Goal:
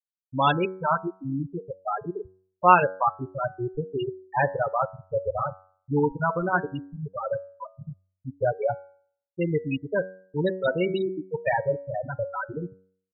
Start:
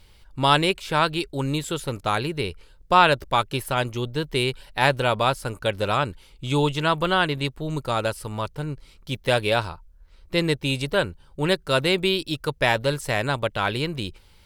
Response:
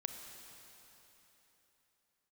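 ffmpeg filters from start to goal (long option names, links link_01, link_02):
-filter_complex "[0:a]asplit=2[link_01][link_02];[1:a]atrim=start_sample=2205,asetrate=83790,aresample=44100,adelay=11[link_03];[link_02][link_03]afir=irnorm=-1:irlink=0,volume=-2.5dB[link_04];[link_01][link_04]amix=inputs=2:normalize=0,afftfilt=real='re*gte(hypot(re,im),0.355)':imag='im*gte(hypot(re,im),0.355)':win_size=1024:overlap=0.75,atempo=1.1,bandreject=frequency=93.9:width_type=h:width=4,bandreject=frequency=187.8:width_type=h:width=4,bandreject=frequency=281.7:width_type=h:width=4,bandreject=frequency=375.6:width_type=h:width=4,bandreject=frequency=469.5:width_type=h:width=4,bandreject=frequency=563.4:width_type=h:width=4,bandreject=frequency=657.3:width_type=h:width=4,bandreject=frequency=751.2:width_type=h:width=4,bandreject=frequency=845.1:width_type=h:width=4,bandreject=frequency=939:width_type=h:width=4,bandreject=frequency=1032.9:width_type=h:width=4,bandreject=frequency=1126.8:width_type=h:width=4,bandreject=frequency=1220.7:width_type=h:width=4,bandreject=frequency=1314.6:width_type=h:width=4,bandreject=frequency=1408.5:width_type=h:width=4,bandreject=frequency=1502.4:width_type=h:width=4,bandreject=frequency=1596.3:width_type=h:width=4,bandreject=frequency=1690.2:width_type=h:width=4,bandreject=frequency=1784.1:width_type=h:width=4,bandreject=frequency=1878:width_type=h:width=4,bandreject=frequency=1971.9:width_type=h:width=4,bandreject=frequency=2065.8:width_type=h:width=4,bandreject=frequency=2159.7:width_type=h:width=4,bandreject=frequency=2253.6:width_type=h:width=4,bandreject=frequency=2347.5:width_type=h:width=4,volume=-1dB"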